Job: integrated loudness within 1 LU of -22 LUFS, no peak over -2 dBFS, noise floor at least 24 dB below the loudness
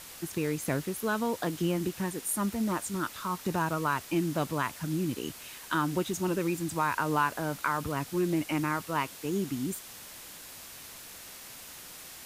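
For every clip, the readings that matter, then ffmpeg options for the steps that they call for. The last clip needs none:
noise floor -47 dBFS; noise floor target -55 dBFS; loudness -31.0 LUFS; peak -14.5 dBFS; loudness target -22.0 LUFS
-> -af "afftdn=nr=8:nf=-47"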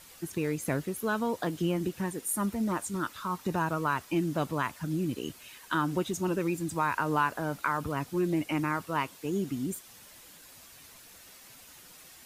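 noise floor -53 dBFS; noise floor target -56 dBFS
-> -af "afftdn=nr=6:nf=-53"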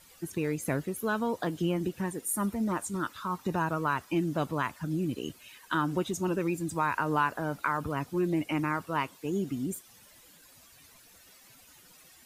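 noise floor -57 dBFS; loudness -31.5 LUFS; peak -14.5 dBFS; loudness target -22.0 LUFS
-> -af "volume=9.5dB"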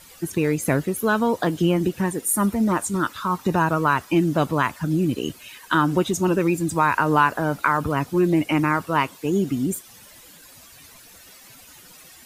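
loudness -22.0 LUFS; peak -5.0 dBFS; noise floor -48 dBFS

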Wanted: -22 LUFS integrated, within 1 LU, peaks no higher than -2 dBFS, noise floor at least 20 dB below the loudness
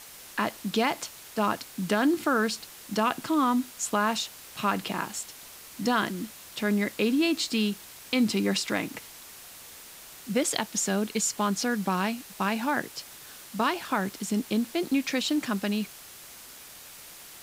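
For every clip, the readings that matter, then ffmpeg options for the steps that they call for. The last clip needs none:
noise floor -47 dBFS; noise floor target -48 dBFS; loudness -28.0 LUFS; peak -8.5 dBFS; loudness target -22.0 LUFS
-> -af "afftdn=nr=6:nf=-47"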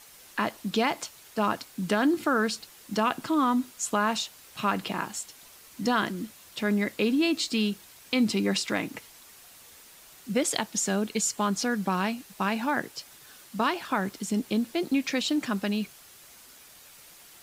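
noise floor -52 dBFS; loudness -28.0 LUFS; peak -9.0 dBFS; loudness target -22.0 LUFS
-> -af "volume=6dB"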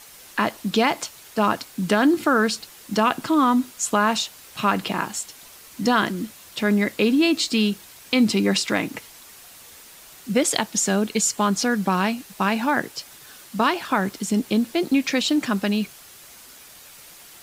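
loudness -22.0 LUFS; peak -3.0 dBFS; noise floor -46 dBFS

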